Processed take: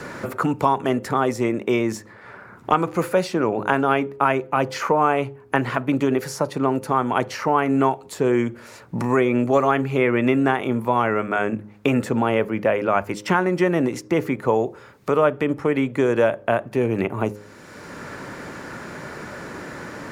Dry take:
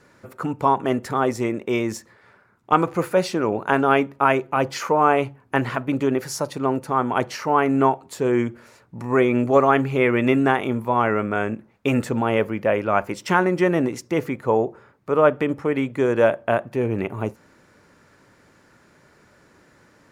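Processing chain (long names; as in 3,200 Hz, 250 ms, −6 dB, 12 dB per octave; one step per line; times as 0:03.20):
hum removal 104 Hz, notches 5
multiband upward and downward compressor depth 70%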